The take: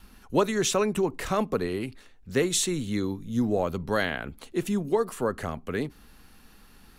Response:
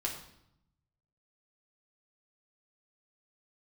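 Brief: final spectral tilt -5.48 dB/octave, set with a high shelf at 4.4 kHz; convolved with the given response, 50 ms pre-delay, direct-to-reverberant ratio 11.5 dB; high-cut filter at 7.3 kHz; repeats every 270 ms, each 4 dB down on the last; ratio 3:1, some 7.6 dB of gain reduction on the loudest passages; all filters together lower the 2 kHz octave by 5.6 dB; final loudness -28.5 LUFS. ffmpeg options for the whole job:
-filter_complex "[0:a]lowpass=7300,equalizer=f=2000:t=o:g=-6,highshelf=f=4400:g=-7,acompressor=threshold=0.0355:ratio=3,aecho=1:1:270|540|810|1080|1350|1620|1890|2160|2430:0.631|0.398|0.25|0.158|0.0994|0.0626|0.0394|0.0249|0.0157,asplit=2[s0][s1];[1:a]atrim=start_sample=2205,adelay=50[s2];[s1][s2]afir=irnorm=-1:irlink=0,volume=0.188[s3];[s0][s3]amix=inputs=2:normalize=0,volume=1.41"

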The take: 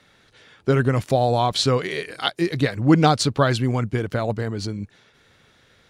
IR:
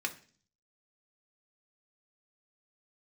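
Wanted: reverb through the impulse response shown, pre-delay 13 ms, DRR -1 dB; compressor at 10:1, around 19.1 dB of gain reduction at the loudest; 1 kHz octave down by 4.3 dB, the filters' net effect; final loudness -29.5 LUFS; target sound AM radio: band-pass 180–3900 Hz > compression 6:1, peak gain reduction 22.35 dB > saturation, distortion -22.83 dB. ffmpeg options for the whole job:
-filter_complex "[0:a]equalizer=f=1000:t=o:g=-6.5,acompressor=threshold=0.0316:ratio=10,asplit=2[s0][s1];[1:a]atrim=start_sample=2205,adelay=13[s2];[s1][s2]afir=irnorm=-1:irlink=0,volume=0.708[s3];[s0][s3]amix=inputs=2:normalize=0,highpass=180,lowpass=3900,acompressor=threshold=0.00355:ratio=6,asoftclip=threshold=0.0112,volume=13.3"

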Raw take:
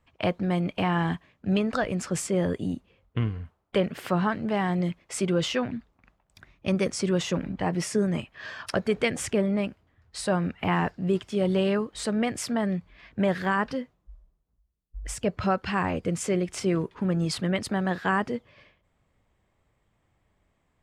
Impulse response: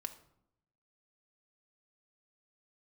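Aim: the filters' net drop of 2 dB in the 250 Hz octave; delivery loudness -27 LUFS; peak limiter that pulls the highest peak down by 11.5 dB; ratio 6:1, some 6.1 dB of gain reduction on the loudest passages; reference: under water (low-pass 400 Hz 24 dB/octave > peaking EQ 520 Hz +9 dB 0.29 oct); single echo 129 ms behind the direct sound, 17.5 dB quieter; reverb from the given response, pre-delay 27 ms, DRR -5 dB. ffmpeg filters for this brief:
-filter_complex "[0:a]equalizer=f=250:t=o:g=-3,acompressor=threshold=0.0447:ratio=6,alimiter=level_in=1.41:limit=0.0631:level=0:latency=1,volume=0.708,aecho=1:1:129:0.133,asplit=2[s0][s1];[1:a]atrim=start_sample=2205,adelay=27[s2];[s1][s2]afir=irnorm=-1:irlink=0,volume=2.24[s3];[s0][s3]amix=inputs=2:normalize=0,lowpass=f=400:w=0.5412,lowpass=f=400:w=1.3066,equalizer=f=520:t=o:w=0.29:g=9,volume=2"

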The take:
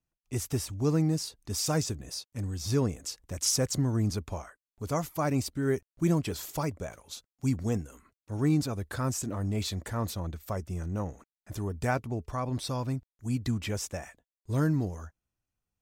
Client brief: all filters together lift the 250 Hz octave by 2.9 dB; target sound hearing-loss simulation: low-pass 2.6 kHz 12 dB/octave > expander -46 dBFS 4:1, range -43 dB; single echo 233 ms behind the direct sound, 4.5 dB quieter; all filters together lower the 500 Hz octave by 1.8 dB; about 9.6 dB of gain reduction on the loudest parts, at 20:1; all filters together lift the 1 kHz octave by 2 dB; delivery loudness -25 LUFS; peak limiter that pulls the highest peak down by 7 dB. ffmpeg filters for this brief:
-af "equalizer=f=250:t=o:g=5,equalizer=f=500:t=o:g=-5,equalizer=f=1000:t=o:g=4,acompressor=threshold=0.0355:ratio=20,alimiter=level_in=1.5:limit=0.0631:level=0:latency=1,volume=0.668,lowpass=2600,aecho=1:1:233:0.596,agate=range=0.00708:threshold=0.00501:ratio=4,volume=3.98"

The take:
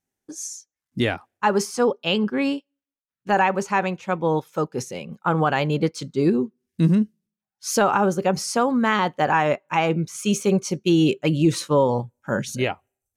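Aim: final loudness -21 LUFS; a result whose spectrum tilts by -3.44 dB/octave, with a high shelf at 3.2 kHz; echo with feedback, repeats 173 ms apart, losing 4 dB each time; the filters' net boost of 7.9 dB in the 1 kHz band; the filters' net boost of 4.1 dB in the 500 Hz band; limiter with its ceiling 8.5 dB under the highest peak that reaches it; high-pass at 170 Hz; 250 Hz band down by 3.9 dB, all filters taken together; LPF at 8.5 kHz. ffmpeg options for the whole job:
-af "highpass=170,lowpass=8500,equalizer=f=250:t=o:g=-6.5,equalizer=f=500:t=o:g=4.5,equalizer=f=1000:t=o:g=8,highshelf=f=3200:g=8.5,alimiter=limit=0.376:level=0:latency=1,aecho=1:1:173|346|519|692|865|1038|1211|1384|1557:0.631|0.398|0.25|0.158|0.0994|0.0626|0.0394|0.0249|0.0157,volume=0.841"

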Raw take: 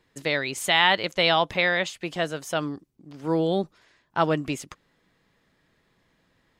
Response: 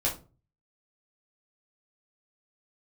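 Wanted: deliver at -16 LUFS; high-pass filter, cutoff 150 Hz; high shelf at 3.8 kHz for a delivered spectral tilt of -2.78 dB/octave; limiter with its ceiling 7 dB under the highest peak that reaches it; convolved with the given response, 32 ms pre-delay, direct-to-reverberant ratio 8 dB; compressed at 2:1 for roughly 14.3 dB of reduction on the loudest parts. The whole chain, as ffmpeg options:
-filter_complex "[0:a]highpass=150,highshelf=f=3800:g=7,acompressor=threshold=0.00891:ratio=2,alimiter=level_in=1.06:limit=0.0631:level=0:latency=1,volume=0.944,asplit=2[s0][s1];[1:a]atrim=start_sample=2205,adelay=32[s2];[s1][s2]afir=irnorm=-1:irlink=0,volume=0.168[s3];[s0][s3]amix=inputs=2:normalize=0,volume=11.2"

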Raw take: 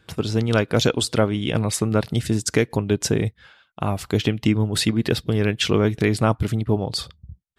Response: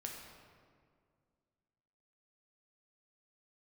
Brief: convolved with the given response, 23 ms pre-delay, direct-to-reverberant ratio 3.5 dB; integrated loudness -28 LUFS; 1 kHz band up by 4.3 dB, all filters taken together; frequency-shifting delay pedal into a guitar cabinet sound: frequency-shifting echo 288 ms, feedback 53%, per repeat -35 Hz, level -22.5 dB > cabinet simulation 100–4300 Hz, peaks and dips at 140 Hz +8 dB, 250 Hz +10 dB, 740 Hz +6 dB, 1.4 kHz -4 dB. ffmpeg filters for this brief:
-filter_complex "[0:a]equalizer=f=1000:t=o:g=3,asplit=2[s0][s1];[1:a]atrim=start_sample=2205,adelay=23[s2];[s1][s2]afir=irnorm=-1:irlink=0,volume=0.841[s3];[s0][s3]amix=inputs=2:normalize=0,asplit=5[s4][s5][s6][s7][s8];[s5]adelay=288,afreqshift=-35,volume=0.075[s9];[s6]adelay=576,afreqshift=-70,volume=0.0398[s10];[s7]adelay=864,afreqshift=-105,volume=0.0211[s11];[s8]adelay=1152,afreqshift=-140,volume=0.0112[s12];[s4][s9][s10][s11][s12]amix=inputs=5:normalize=0,highpass=100,equalizer=f=140:t=q:w=4:g=8,equalizer=f=250:t=q:w=4:g=10,equalizer=f=740:t=q:w=4:g=6,equalizer=f=1400:t=q:w=4:g=-4,lowpass=f=4300:w=0.5412,lowpass=f=4300:w=1.3066,volume=0.299"

